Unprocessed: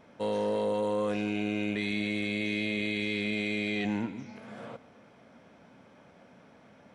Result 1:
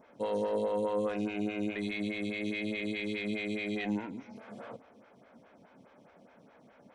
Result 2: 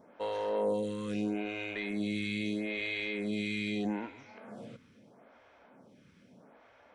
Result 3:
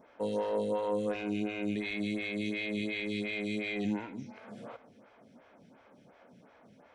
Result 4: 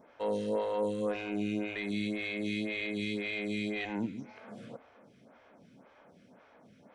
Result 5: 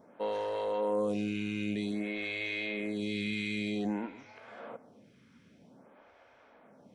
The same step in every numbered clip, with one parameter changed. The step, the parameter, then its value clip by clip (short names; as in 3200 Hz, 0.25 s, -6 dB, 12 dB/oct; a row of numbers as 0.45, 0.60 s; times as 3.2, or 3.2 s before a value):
photocell phaser, rate: 4.8, 0.78, 2.8, 1.9, 0.52 Hz